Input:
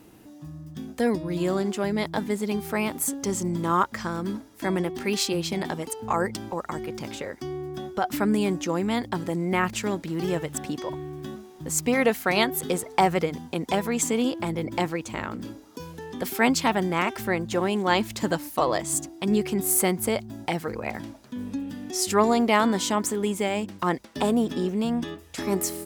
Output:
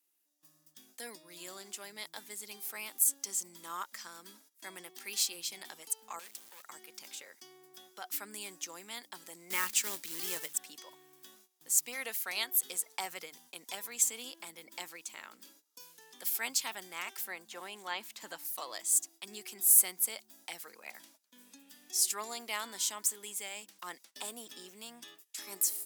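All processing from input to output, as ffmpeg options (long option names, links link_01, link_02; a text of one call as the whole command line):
ffmpeg -i in.wav -filter_complex "[0:a]asettb=1/sr,asplit=3[link_01][link_02][link_03];[link_01]atrim=end=6.194[link_04];[link_02]atrim=start=6.19:end=6.63,asetpts=PTS-STARTPTS,afade=type=in:duration=0.004:curve=qsin,afade=type=out:start_time=0.436:duration=0.004:curve=qsin,volume=28.5dB,asoftclip=hard,volume=-28.5dB,acrusher=bits=5:dc=4:mix=0:aa=0.000001[link_05];[link_03]atrim=start=6.626[link_06];[link_04][link_05]acrossfade=duration=0.004:curve1=hsin:curve2=qsin[link_07];[link_07][link_06]acrossfade=duration=0.004:curve1=qsin:curve2=hsin,asettb=1/sr,asplit=3[link_08][link_09][link_10];[link_08]atrim=end=9.504[link_11];[link_09]atrim=start=9.5:end=10.53,asetpts=PTS-STARTPTS,afade=type=in:duration=0.004:curve=qsin,afade=type=out:start_time=1.026:duration=0.004:curve=qsin,bandreject=frequency=720:width=5.5,acontrast=64,acrusher=bits=4:mode=log:mix=0:aa=0.000001[link_12];[link_10]atrim=start=10.526[link_13];[link_11][link_12]acrossfade=duration=0.004:curve1=hsin:curve2=qsin[link_14];[link_14][link_13]acrossfade=duration=0.004:curve1=qsin:curve2=hsin,asettb=1/sr,asplit=3[link_15][link_16][link_17];[link_15]atrim=end=17.284[link_18];[link_16]atrim=start=17.28:end=18.45,asetpts=PTS-STARTPTS,afade=type=in:duration=0.004:curve=qsin,afade=type=out:start_time=1.166:duration=0.004:curve=qsin,acrossover=split=3500[link_19][link_20];[link_20]acompressor=threshold=-46dB:ratio=4:attack=1:release=60[link_21];[link_19][link_21]amix=inputs=2:normalize=0,equalizer=frequency=850:width=1.2:gain=3[link_22];[link_17]atrim=start=18.446[link_23];[link_18][link_22]acrossfade=duration=0.004:curve1=hsin:curve2=qsin[link_24];[link_24][link_23]acrossfade=duration=0.004:curve1=qsin:curve2=hsin,agate=range=-16dB:threshold=-42dB:ratio=16:detection=peak,highpass=frequency=160:width=0.5412,highpass=frequency=160:width=1.3066,aderivative,volume=-1.5dB" out.wav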